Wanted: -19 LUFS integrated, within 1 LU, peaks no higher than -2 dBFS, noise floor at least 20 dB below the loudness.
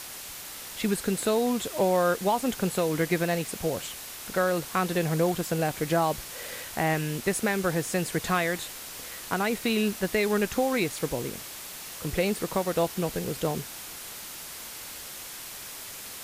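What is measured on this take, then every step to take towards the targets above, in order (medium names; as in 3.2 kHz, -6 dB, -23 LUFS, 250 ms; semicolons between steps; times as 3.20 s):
noise floor -41 dBFS; noise floor target -49 dBFS; loudness -28.5 LUFS; peak level -13.0 dBFS; loudness target -19.0 LUFS
-> noise print and reduce 8 dB; trim +9.5 dB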